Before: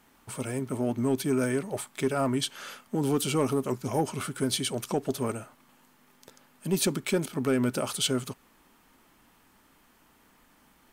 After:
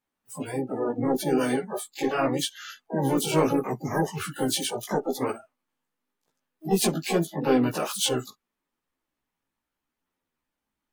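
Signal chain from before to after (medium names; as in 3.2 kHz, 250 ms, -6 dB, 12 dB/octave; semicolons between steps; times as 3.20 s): harmony voices +3 st -8 dB, +4 st -18 dB, +12 st -7 dB; spectral noise reduction 26 dB; chorus voices 2, 0.74 Hz, delay 15 ms, depth 3.8 ms; trim +4 dB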